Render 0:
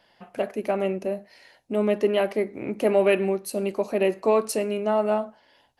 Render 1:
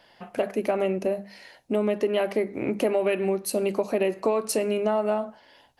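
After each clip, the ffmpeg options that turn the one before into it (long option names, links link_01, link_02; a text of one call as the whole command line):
ffmpeg -i in.wav -af "bandreject=frequency=50:width_type=h:width=6,bandreject=frequency=100:width_type=h:width=6,bandreject=frequency=150:width_type=h:width=6,bandreject=frequency=200:width_type=h:width=6,acompressor=threshold=-25dB:ratio=6,volume=4.5dB" out.wav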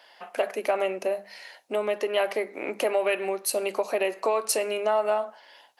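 ffmpeg -i in.wav -af "highpass=600,volume=3.5dB" out.wav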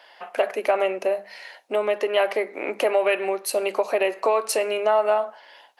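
ffmpeg -i in.wav -af "bass=frequency=250:gain=-8,treble=frequency=4000:gain=-6,volume=4.5dB" out.wav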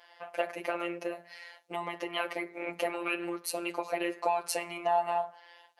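ffmpeg -i in.wav -af "flanger=delay=3:depth=2.8:regen=-55:speed=0.82:shape=sinusoidal,afftfilt=real='hypot(re,im)*cos(PI*b)':imag='0':win_size=1024:overlap=0.75" out.wav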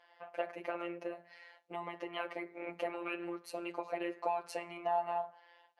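ffmpeg -i in.wav -af "aemphasis=mode=reproduction:type=75kf,volume=-5dB" out.wav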